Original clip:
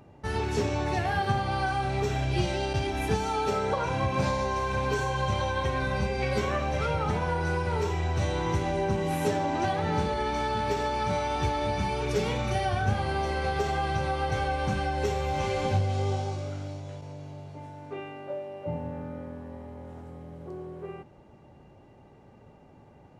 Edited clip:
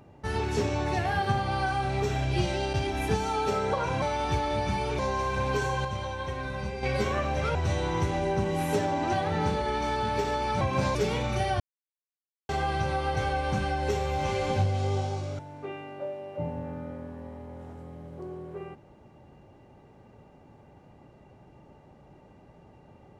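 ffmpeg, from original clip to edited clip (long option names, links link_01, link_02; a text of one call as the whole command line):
ffmpeg -i in.wav -filter_complex "[0:a]asplit=11[link_01][link_02][link_03][link_04][link_05][link_06][link_07][link_08][link_09][link_10][link_11];[link_01]atrim=end=4.022[link_12];[link_02]atrim=start=11.128:end=12.102[link_13];[link_03]atrim=start=4.358:end=5.222[link_14];[link_04]atrim=start=5.218:end=6.202,asetpts=PTS-STARTPTS,volume=-5.5dB[link_15];[link_05]atrim=start=6.198:end=6.922[link_16];[link_06]atrim=start=8.068:end=11.132[link_17];[link_07]atrim=start=4.018:end=4.362[link_18];[link_08]atrim=start=12.098:end=12.75,asetpts=PTS-STARTPTS,afade=type=out:start_time=0.648:duration=0.004:curve=hsin[link_19];[link_09]atrim=start=12.75:end=13.64,asetpts=PTS-STARTPTS,volume=0[link_20];[link_10]atrim=start=13.64:end=16.542,asetpts=PTS-STARTPTS,afade=type=in:duration=0.004:curve=hsin[link_21];[link_11]atrim=start=17.668[link_22];[link_12][link_13]acrossfade=duration=0.004:curve1=hsin:curve2=hsin[link_23];[link_23][link_14]acrossfade=duration=0.004:curve1=hsin:curve2=hsin[link_24];[link_24][link_15]acrossfade=duration=0.004:curve1=hsin:curve2=hsin[link_25];[link_25][link_16]acrossfade=duration=0.004:curve1=hsin:curve2=hsin[link_26];[link_26][link_17]acrossfade=duration=0.004:curve1=hsin:curve2=hsin[link_27];[link_27][link_18]acrossfade=duration=0.004:curve1=hsin:curve2=hsin[link_28];[link_19][link_20][link_21]concat=n=3:v=0:a=1[link_29];[link_28][link_29]acrossfade=duration=0.004:curve1=hsin:curve2=hsin[link_30];[link_30][link_22]acrossfade=duration=0.004:curve1=hsin:curve2=hsin" out.wav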